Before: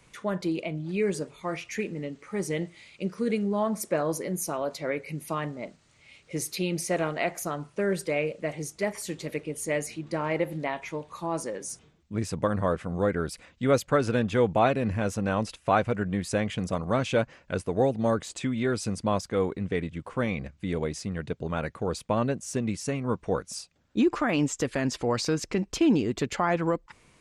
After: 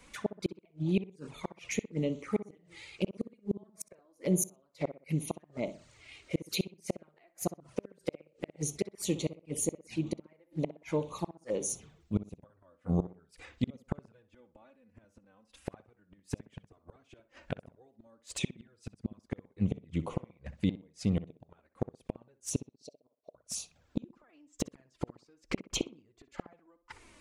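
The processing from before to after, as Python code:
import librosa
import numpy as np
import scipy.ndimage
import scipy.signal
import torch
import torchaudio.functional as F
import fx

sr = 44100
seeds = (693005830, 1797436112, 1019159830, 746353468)

y = fx.gate_flip(x, sr, shuts_db=-21.0, range_db=-39)
y = fx.env_flanger(y, sr, rest_ms=4.7, full_db=-36.0)
y = fx.double_bandpass(y, sr, hz=1600.0, octaves=2.8, at=(22.61, 23.35))
y = fx.echo_tape(y, sr, ms=62, feedback_pct=36, wet_db=-11.5, lp_hz=1800.0, drive_db=22.0, wow_cents=28)
y = y * 10.0 ** (4.5 / 20.0)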